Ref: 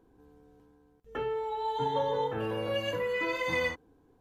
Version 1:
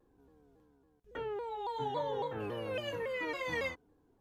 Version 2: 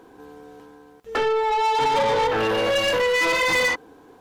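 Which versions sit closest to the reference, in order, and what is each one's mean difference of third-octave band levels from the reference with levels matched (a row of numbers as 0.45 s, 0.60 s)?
1, 2; 2.0 dB, 5.5 dB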